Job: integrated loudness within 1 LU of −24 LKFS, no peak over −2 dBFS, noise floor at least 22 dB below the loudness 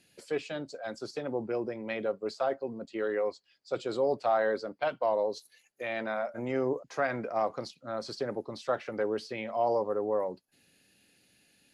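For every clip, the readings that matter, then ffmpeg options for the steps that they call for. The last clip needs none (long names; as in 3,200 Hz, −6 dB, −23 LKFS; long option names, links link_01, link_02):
integrated loudness −32.5 LKFS; sample peak −16.5 dBFS; target loudness −24.0 LKFS
→ -af "volume=8.5dB"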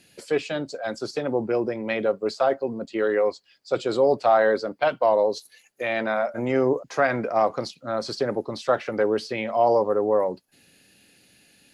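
integrated loudness −24.0 LKFS; sample peak −8.0 dBFS; background noise floor −60 dBFS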